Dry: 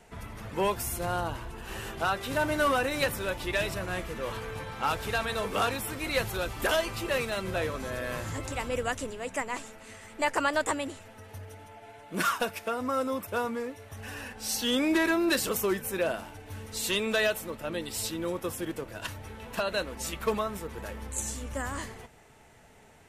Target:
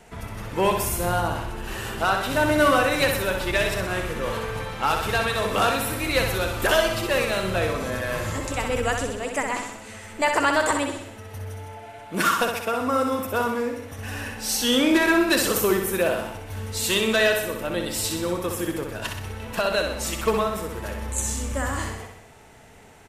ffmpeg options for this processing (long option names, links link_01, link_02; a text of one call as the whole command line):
ffmpeg -i in.wav -af "aecho=1:1:63|126|189|252|315|378|441:0.531|0.297|0.166|0.0932|0.0522|0.0292|0.0164,volume=5.5dB" out.wav